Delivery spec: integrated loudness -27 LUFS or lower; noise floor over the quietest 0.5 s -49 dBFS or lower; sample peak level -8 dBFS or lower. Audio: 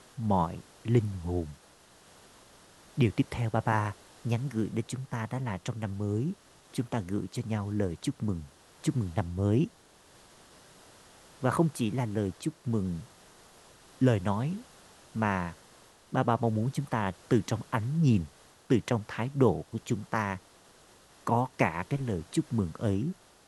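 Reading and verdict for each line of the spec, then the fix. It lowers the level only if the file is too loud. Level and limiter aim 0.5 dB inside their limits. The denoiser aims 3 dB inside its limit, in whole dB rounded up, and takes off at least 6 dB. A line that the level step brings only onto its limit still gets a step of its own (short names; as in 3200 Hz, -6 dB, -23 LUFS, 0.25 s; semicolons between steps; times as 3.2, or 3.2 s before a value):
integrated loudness -31.0 LUFS: OK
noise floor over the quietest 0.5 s -58 dBFS: OK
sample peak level -9.0 dBFS: OK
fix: none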